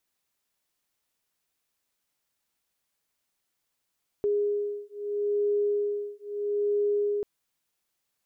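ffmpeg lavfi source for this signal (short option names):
-f lavfi -i "aevalsrc='0.0398*(sin(2*PI*411*t)+sin(2*PI*411.77*t))':d=2.99:s=44100"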